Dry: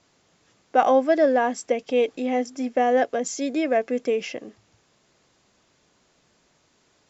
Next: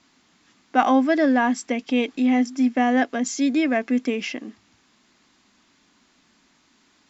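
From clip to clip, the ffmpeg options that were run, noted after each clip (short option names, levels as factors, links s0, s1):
-af "equalizer=f=125:t=o:w=1:g=-8,equalizer=f=250:t=o:w=1:g=12,equalizer=f=500:t=o:w=1:g=-10,equalizer=f=1000:t=o:w=1:g=4,equalizer=f=2000:t=o:w=1:g=4,equalizer=f=4000:t=o:w=1:g=4"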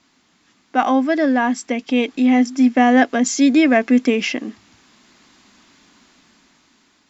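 -af "dynaudnorm=f=460:g=7:m=3.55,volume=1.12"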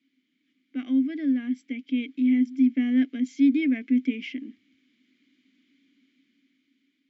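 -filter_complex "[0:a]asplit=3[s0][s1][s2];[s0]bandpass=f=270:t=q:w=8,volume=1[s3];[s1]bandpass=f=2290:t=q:w=8,volume=0.501[s4];[s2]bandpass=f=3010:t=q:w=8,volume=0.355[s5];[s3][s4][s5]amix=inputs=3:normalize=0,volume=0.668"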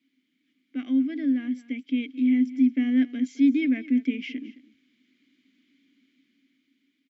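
-af "aecho=1:1:217:0.126"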